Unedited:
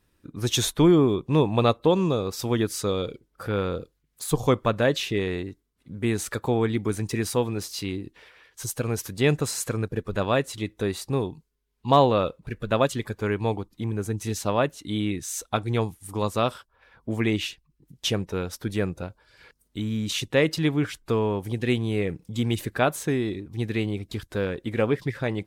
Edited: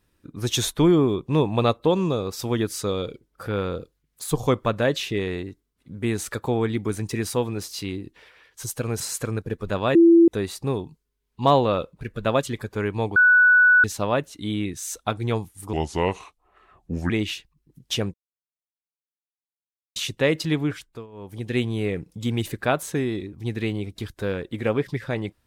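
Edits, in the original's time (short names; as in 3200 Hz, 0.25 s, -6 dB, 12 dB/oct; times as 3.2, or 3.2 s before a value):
9–9.46 cut
10.41–10.74 bleep 336 Hz -9.5 dBFS
13.62–14.3 bleep 1480 Hz -11.5 dBFS
16.19–17.23 speed 76%
18.27–20.09 mute
20.75–21.7 dip -22.5 dB, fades 0.45 s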